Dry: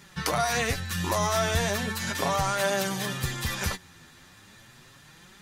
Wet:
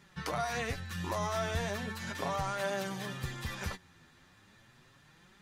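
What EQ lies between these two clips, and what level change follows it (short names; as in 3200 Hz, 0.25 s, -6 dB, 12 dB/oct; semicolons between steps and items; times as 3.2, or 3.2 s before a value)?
high shelf 4800 Hz -9 dB; -7.5 dB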